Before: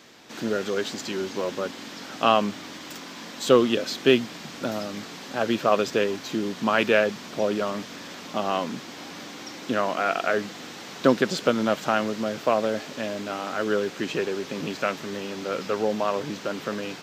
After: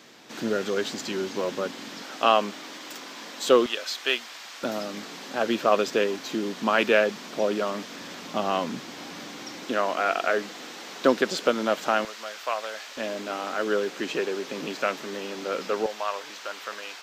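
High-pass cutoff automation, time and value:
120 Hz
from 2.02 s 310 Hz
from 3.66 s 860 Hz
from 4.63 s 210 Hz
from 7.98 s 100 Hz
from 9.65 s 280 Hz
from 12.05 s 1 kHz
from 12.97 s 260 Hz
from 15.86 s 850 Hz

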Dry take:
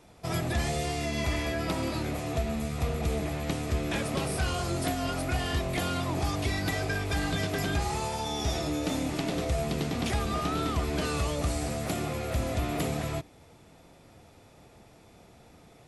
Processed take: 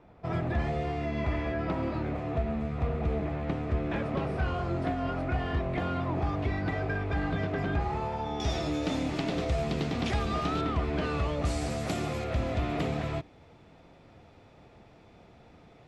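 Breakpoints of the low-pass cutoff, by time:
1.8 kHz
from 8.40 s 4.8 kHz
from 10.61 s 2.7 kHz
from 11.45 s 6.9 kHz
from 12.24 s 3.6 kHz

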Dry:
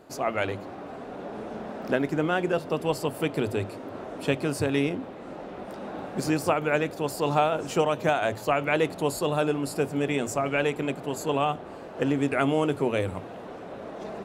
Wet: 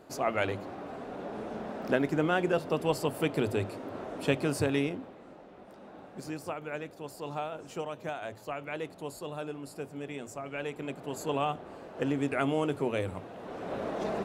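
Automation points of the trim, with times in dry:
4.64 s -2 dB
5.44 s -13 dB
10.44 s -13 dB
11.23 s -5 dB
13.34 s -5 dB
13.74 s +4 dB

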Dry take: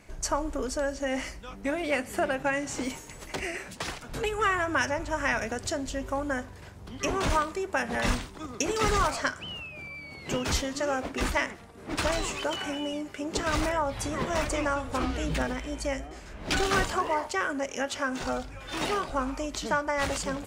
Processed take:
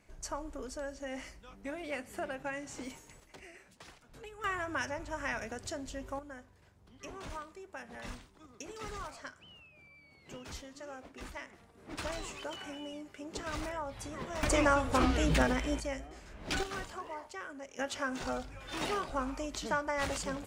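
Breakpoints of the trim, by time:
-11 dB
from 3.20 s -19 dB
from 4.44 s -9 dB
from 6.19 s -17.5 dB
from 11.53 s -11 dB
from 14.43 s +1.5 dB
from 15.80 s -7 dB
from 16.63 s -15 dB
from 17.79 s -5.5 dB

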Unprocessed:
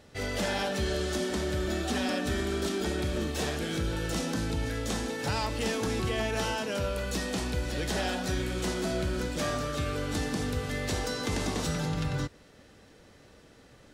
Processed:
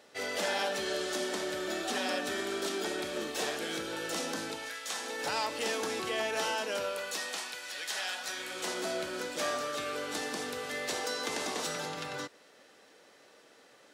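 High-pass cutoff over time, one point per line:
4.48 s 400 Hz
4.80 s 1.3 kHz
5.21 s 420 Hz
6.76 s 420 Hz
7.59 s 1.2 kHz
8.16 s 1.2 kHz
8.77 s 440 Hz

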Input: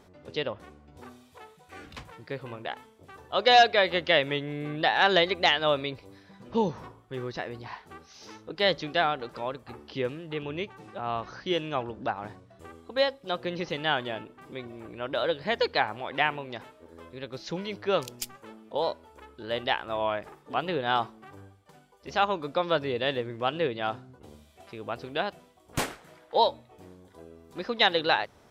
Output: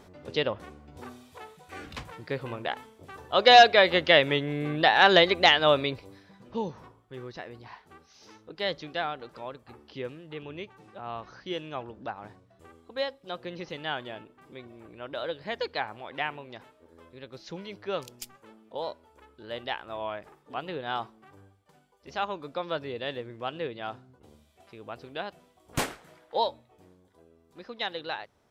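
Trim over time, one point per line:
5.91 s +3.5 dB
6.59 s -6 dB
25.25 s -6 dB
25.79 s +0.5 dB
27.24 s -10.5 dB

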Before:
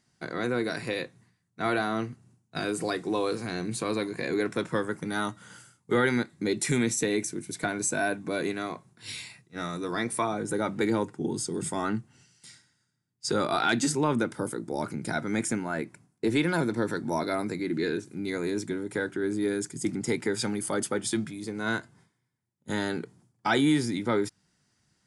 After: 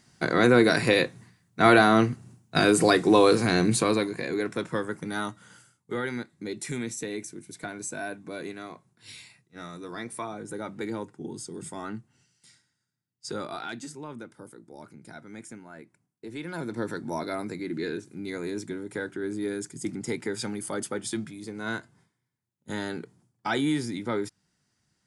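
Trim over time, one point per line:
3.67 s +10 dB
4.27 s -1 dB
5.18 s -1 dB
5.94 s -7 dB
13.36 s -7 dB
13.91 s -14.5 dB
16.28 s -14.5 dB
16.81 s -3 dB

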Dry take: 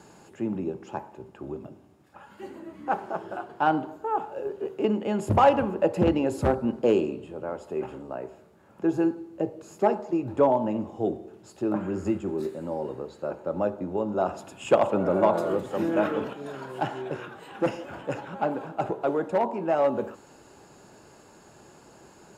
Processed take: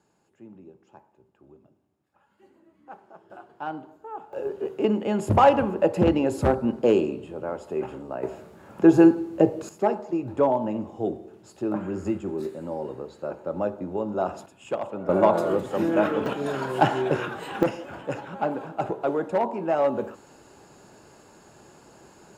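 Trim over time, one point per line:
-17 dB
from 3.30 s -10 dB
from 4.33 s +2 dB
from 8.23 s +9.5 dB
from 9.69 s -0.5 dB
from 14.46 s -9 dB
from 15.09 s +2.5 dB
from 16.26 s +9 dB
from 17.63 s +0.5 dB

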